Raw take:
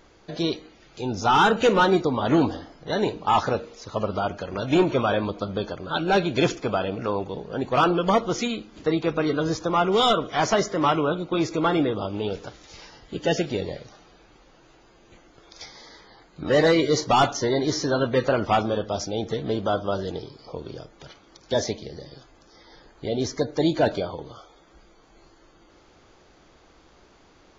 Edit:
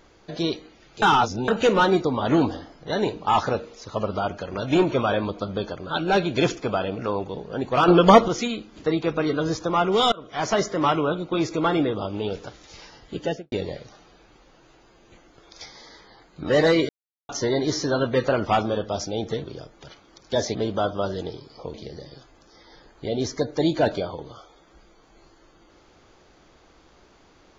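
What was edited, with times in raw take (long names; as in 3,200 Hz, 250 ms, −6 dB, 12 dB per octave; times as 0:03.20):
0:01.02–0:01.48: reverse
0:07.88–0:08.28: clip gain +8 dB
0:10.12–0:10.60: fade in, from −23.5 dB
0:13.15–0:13.52: fade out and dull
0:16.89–0:17.29: silence
0:20.63–0:21.74: move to 0:19.44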